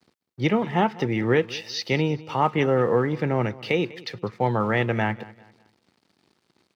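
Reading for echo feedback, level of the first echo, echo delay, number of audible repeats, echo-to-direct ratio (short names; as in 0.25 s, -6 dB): 34%, -20.0 dB, 0.197 s, 2, -19.5 dB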